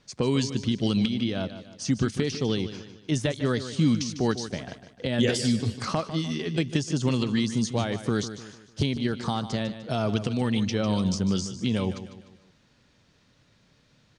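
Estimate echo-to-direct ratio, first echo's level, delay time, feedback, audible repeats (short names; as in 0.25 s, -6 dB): -11.0 dB, -12.0 dB, 0.15 s, 43%, 4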